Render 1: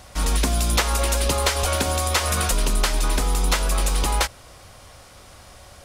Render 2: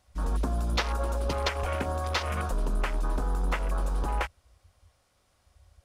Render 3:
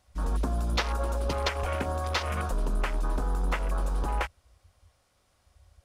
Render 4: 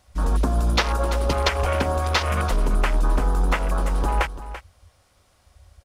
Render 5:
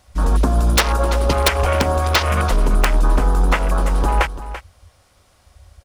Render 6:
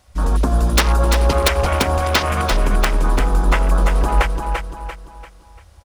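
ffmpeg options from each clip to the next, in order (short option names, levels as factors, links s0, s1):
-af "afwtdn=0.0447,volume=0.473"
-af anull
-af "aecho=1:1:337:0.211,volume=2.37"
-af "aeval=exprs='(mod(2.99*val(0)+1,2)-1)/2.99':c=same,volume=1.78"
-af "aecho=1:1:343|686|1029|1372|1715:0.501|0.19|0.0724|0.0275|0.0105,volume=0.891"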